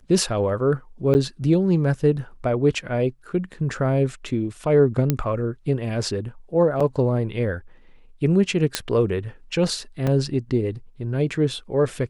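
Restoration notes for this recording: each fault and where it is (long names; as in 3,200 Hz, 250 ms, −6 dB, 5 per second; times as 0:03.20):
0:01.14–0:01.15: drop-out 9.9 ms
0:05.10: click −6 dBFS
0:06.80–0:06.81: drop-out 5.1 ms
0:08.75: click −4 dBFS
0:10.07: drop-out 4.1 ms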